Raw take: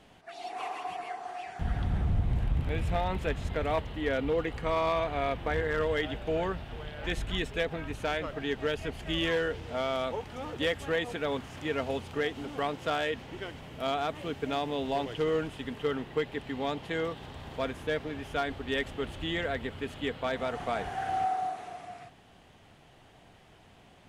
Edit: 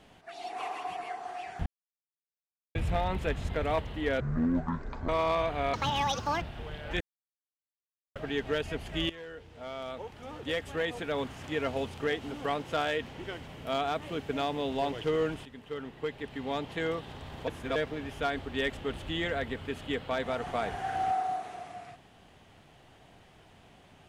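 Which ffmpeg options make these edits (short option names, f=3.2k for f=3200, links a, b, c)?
-filter_complex "[0:a]asplit=13[a][b][c][d][e][f][g][h][i][j][k][l][m];[a]atrim=end=1.66,asetpts=PTS-STARTPTS,afade=t=out:st=1.656:d=0.004:c=hsin[n];[b]atrim=start=1.66:end=2.75,asetpts=PTS-STARTPTS,volume=0[o];[c]atrim=start=2.75:end=4.204,asetpts=PTS-STARTPTS,afade=t=in:d=0.004:c=hsin[p];[d]atrim=start=4.2:end=4.66,asetpts=PTS-STARTPTS,asetrate=22932,aresample=44100[q];[e]atrim=start=4.656:end=5.314[r];[f]atrim=start=5.31:end=6.55,asetpts=PTS-STARTPTS,asetrate=80262,aresample=44100,atrim=end_sample=30046,asetpts=PTS-STARTPTS[s];[g]atrim=start=6.546:end=7.14,asetpts=PTS-STARTPTS,afade=t=out:st=0.59:d=0.004:c=hsin[t];[h]atrim=start=7.14:end=8.29,asetpts=PTS-STARTPTS,volume=0[u];[i]atrim=start=8.29:end=9.23,asetpts=PTS-STARTPTS,afade=t=in:d=0.004:c=hsin,afade=t=out:st=0.936:d=0.004:c=hsin:silence=0.112202[v];[j]atrim=start=9.23:end=15.59,asetpts=PTS-STARTPTS,afade=t=in:d=2.23:silence=0.112202,afade=t=out:st=6.356:d=0.004:c=hsin:silence=0.237137[w];[k]atrim=start=15.59:end=17.612,asetpts=PTS-STARTPTS,afade=t=in:d=1.27:silence=0.237137[x];[l]atrim=start=17.608:end=17.892,asetpts=PTS-STARTPTS,areverse[y];[m]atrim=start=17.888[z];[n][o][p]concat=n=3:v=0:a=1[aa];[aa][q]acrossfade=d=0.004:c1=hsin:c2=hsin[ab];[ab][r]acrossfade=d=0.004:c1=hsin:c2=hsin[ac];[ac][s]acrossfade=d=0.004:c1=hsin:c2=hsin[ad];[t][u][v][w][x]concat=n=5:v=0:a=1[ae];[ad][ae]acrossfade=d=0.004:c1=hsin:c2=hsin[af];[af][y]acrossfade=d=0.004:c1=hsin:c2=hsin[ag];[ag][z]acrossfade=d=0.004:c1=hsin:c2=hsin"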